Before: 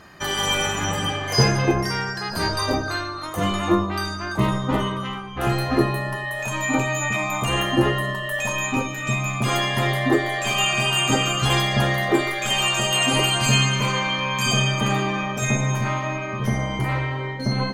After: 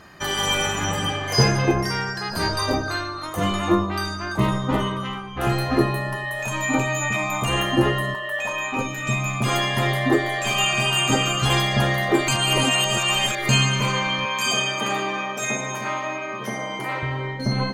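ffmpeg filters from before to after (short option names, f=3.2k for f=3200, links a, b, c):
-filter_complex "[0:a]asettb=1/sr,asplit=3[a][b][c];[a]atrim=end=8.144[d];[b]atrim=start=8.14:end=8.79,asetpts=PTS-STARTPTS,afade=t=in:d=0.004:c=qsin,afade=t=out:st=0.646:d=0.004:c=qsin,bass=f=250:g=-14,treble=f=4k:g=-9[e];[c]atrim=start=8.786[f];[d][e]acrossfade=d=0.004:c1=hsin:c2=qsin[g];[g][f]acrossfade=d=0.004:c1=qsin:c2=hsin,asettb=1/sr,asplit=3[h][i][j];[h]atrim=end=14.254[k];[i]atrim=start=14.25:end=17.03,asetpts=PTS-STARTPTS,afade=t=in:d=0.004:c=qsin,afade=t=out:st=2.776:d=0.004:c=qsin,highpass=310[l];[j]atrim=start=17.026[m];[k][l]acrossfade=d=0.004:c1=hsin:c2=qsin[n];[n][m]acrossfade=d=0.004:c1=qsin:c2=hsin,asplit=3[o][p][q];[o]atrim=end=12.282[r];[p]atrim=start=12.278:end=13.492,asetpts=PTS-STARTPTS,areverse[s];[q]atrim=start=13.488[t];[r][s]acrossfade=d=0.004:c1=hsin:c2=hsin[u];[u][t]acrossfade=d=0.004:c1=hsin:c2=hsin"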